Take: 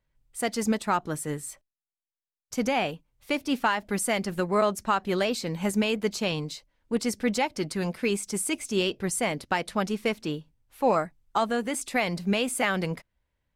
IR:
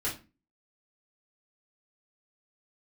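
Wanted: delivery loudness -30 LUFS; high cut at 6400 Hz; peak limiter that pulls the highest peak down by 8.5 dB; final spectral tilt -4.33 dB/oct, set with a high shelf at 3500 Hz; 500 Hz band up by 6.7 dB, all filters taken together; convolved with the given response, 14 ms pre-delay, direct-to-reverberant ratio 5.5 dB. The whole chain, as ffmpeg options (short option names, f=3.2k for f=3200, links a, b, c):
-filter_complex "[0:a]lowpass=6.4k,equalizer=f=500:t=o:g=8,highshelf=f=3.5k:g=7,alimiter=limit=-15dB:level=0:latency=1,asplit=2[a][b];[1:a]atrim=start_sample=2205,adelay=14[c];[b][c]afir=irnorm=-1:irlink=0,volume=-11dB[d];[a][d]amix=inputs=2:normalize=0,volume=-4.5dB"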